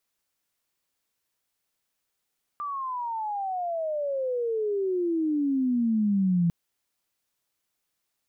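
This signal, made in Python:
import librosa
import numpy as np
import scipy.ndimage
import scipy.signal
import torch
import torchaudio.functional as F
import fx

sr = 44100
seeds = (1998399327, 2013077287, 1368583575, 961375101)

y = fx.riser_tone(sr, length_s=3.9, level_db=-19.5, wave='sine', hz=1190.0, rise_st=-34.0, swell_db=10)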